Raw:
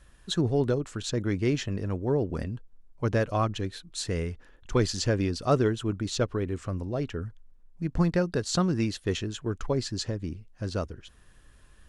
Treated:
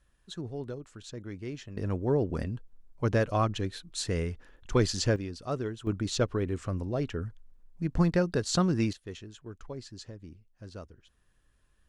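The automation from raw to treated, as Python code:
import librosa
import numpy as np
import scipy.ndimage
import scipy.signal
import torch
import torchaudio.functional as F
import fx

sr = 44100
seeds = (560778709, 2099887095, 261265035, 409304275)

y = fx.gain(x, sr, db=fx.steps((0.0, -12.5), (1.77, -0.5), (5.16, -9.5), (5.87, -0.5), (8.93, -13.0)))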